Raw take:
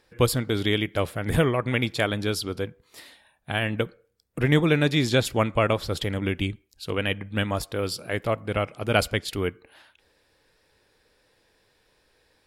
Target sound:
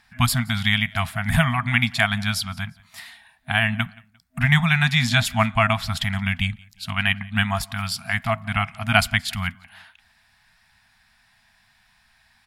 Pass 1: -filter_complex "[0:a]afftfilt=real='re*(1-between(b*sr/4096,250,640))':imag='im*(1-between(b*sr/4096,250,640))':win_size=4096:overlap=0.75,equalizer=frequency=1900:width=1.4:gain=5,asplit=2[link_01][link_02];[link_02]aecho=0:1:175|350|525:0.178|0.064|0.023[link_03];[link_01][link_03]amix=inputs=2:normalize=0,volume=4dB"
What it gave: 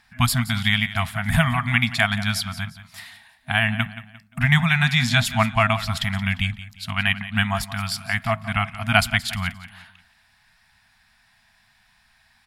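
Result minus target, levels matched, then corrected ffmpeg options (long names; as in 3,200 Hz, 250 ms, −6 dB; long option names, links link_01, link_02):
echo-to-direct +10.5 dB
-filter_complex "[0:a]afftfilt=real='re*(1-between(b*sr/4096,250,640))':imag='im*(1-between(b*sr/4096,250,640))':win_size=4096:overlap=0.75,equalizer=frequency=1900:width=1.4:gain=5,asplit=2[link_01][link_02];[link_02]aecho=0:1:175|350:0.0531|0.0191[link_03];[link_01][link_03]amix=inputs=2:normalize=0,volume=4dB"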